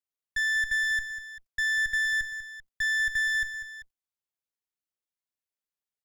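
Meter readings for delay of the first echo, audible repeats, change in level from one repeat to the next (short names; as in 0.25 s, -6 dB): 0.195 s, 2, -5.0 dB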